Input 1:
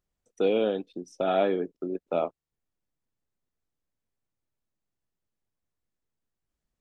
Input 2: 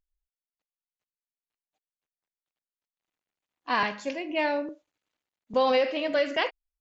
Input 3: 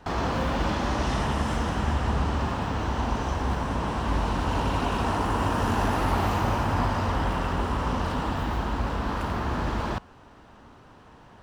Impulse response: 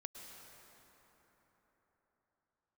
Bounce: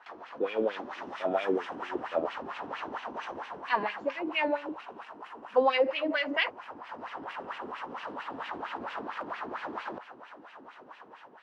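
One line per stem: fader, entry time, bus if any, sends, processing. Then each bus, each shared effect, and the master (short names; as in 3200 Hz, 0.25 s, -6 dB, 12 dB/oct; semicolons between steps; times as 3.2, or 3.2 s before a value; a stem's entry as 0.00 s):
-3.0 dB, 0.00 s, no send, dry
-1.0 dB, 0.00 s, no send, dry
-2.5 dB, 0.00 s, send -5.5 dB, HPF 580 Hz 6 dB/oct; negative-ratio compressor -38 dBFS, ratio -1; auto duck -6 dB, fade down 0.40 s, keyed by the second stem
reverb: on, RT60 4.4 s, pre-delay 97 ms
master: AGC gain up to 6 dB; LFO band-pass sine 4.4 Hz 280–2600 Hz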